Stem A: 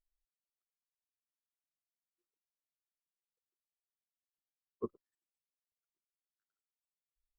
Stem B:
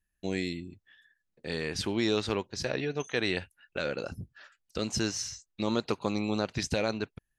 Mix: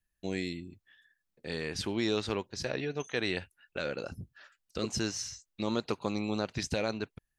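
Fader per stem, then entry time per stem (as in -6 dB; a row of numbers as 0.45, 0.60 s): +0.5, -2.5 dB; 0.00, 0.00 s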